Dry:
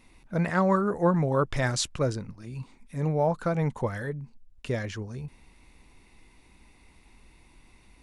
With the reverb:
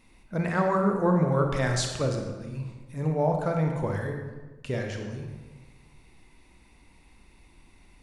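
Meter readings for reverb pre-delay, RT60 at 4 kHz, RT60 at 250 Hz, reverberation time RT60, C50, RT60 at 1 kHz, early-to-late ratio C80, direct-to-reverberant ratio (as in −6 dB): 31 ms, 0.90 s, 1.4 s, 1.3 s, 4.0 dB, 1.2 s, 6.0 dB, 2.5 dB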